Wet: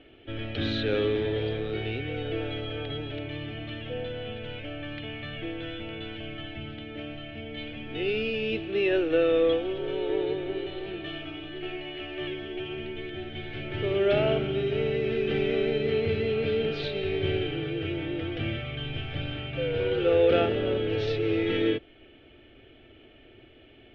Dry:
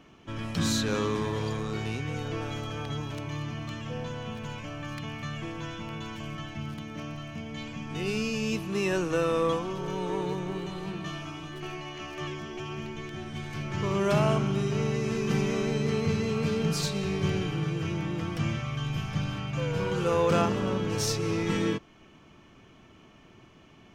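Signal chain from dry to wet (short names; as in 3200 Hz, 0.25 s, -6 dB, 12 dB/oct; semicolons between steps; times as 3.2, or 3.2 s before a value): elliptic low-pass 3500 Hz, stop band 70 dB; fixed phaser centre 430 Hz, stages 4; gain +6 dB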